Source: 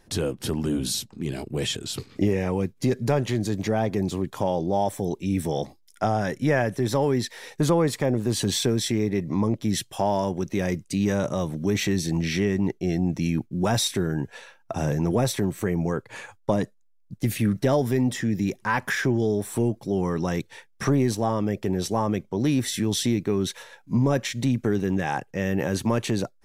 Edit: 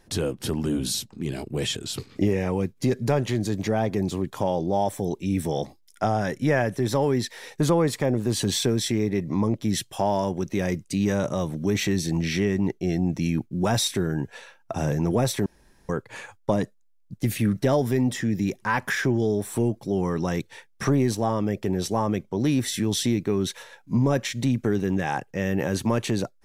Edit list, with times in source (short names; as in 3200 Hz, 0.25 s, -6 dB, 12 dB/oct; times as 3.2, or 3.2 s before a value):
15.46–15.89 room tone